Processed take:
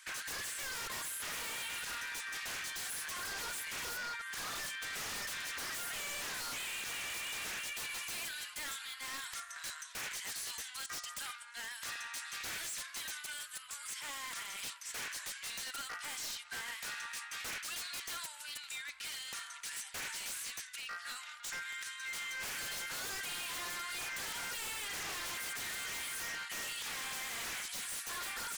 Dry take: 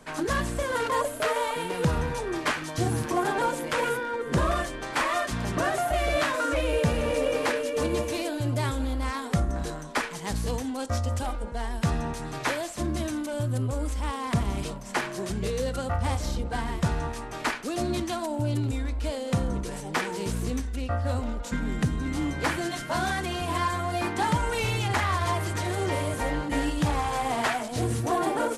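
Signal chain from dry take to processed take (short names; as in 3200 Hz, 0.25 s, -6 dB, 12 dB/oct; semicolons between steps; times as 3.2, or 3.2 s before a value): inverse Chebyshev high-pass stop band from 460 Hz, stop band 60 dB; limiter -27 dBFS, peak gain reduction 10 dB; wavefolder -38.5 dBFS; gain +2.5 dB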